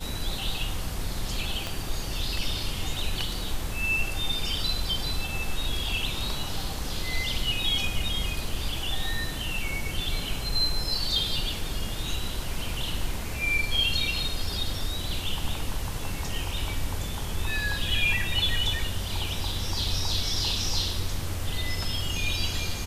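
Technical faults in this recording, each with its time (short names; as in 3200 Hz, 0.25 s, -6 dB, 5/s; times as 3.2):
1.67 pop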